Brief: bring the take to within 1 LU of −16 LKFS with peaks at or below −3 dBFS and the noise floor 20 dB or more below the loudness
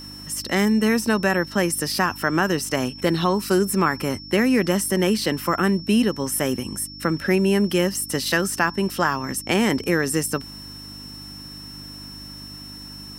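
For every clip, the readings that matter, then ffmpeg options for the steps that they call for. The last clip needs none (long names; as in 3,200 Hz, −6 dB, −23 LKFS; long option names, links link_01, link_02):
mains hum 50 Hz; hum harmonics up to 300 Hz; level of the hum −43 dBFS; interfering tone 5,400 Hz; level of the tone −38 dBFS; integrated loudness −21.5 LKFS; sample peak −5.0 dBFS; target loudness −16.0 LKFS
→ -af "bandreject=frequency=50:width_type=h:width=4,bandreject=frequency=100:width_type=h:width=4,bandreject=frequency=150:width_type=h:width=4,bandreject=frequency=200:width_type=h:width=4,bandreject=frequency=250:width_type=h:width=4,bandreject=frequency=300:width_type=h:width=4"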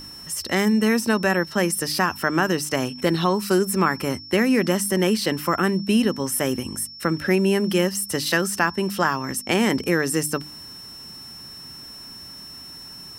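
mains hum none found; interfering tone 5,400 Hz; level of the tone −38 dBFS
→ -af "bandreject=frequency=5400:width=30"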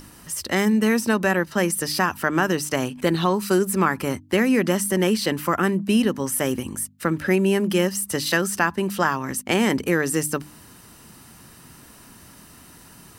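interfering tone none found; integrated loudness −22.0 LKFS; sample peak −5.0 dBFS; target loudness −16.0 LKFS
→ -af "volume=6dB,alimiter=limit=-3dB:level=0:latency=1"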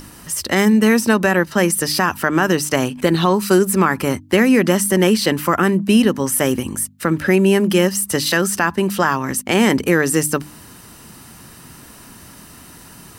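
integrated loudness −16.5 LKFS; sample peak −3.0 dBFS; background noise floor −42 dBFS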